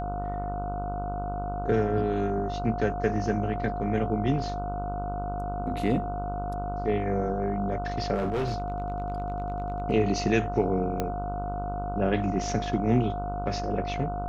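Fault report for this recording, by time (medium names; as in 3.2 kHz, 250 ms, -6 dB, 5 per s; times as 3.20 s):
buzz 50 Hz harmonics 30 -34 dBFS
whine 710 Hz -32 dBFS
8.14–9.80 s: clipped -24 dBFS
11.00 s: pop -14 dBFS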